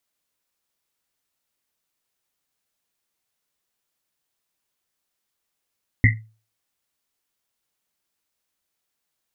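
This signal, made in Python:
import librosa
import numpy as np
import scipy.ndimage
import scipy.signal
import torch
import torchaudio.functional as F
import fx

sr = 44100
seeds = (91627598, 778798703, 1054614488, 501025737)

y = fx.risset_drum(sr, seeds[0], length_s=1.1, hz=110.0, decay_s=0.36, noise_hz=2000.0, noise_width_hz=210.0, noise_pct=40)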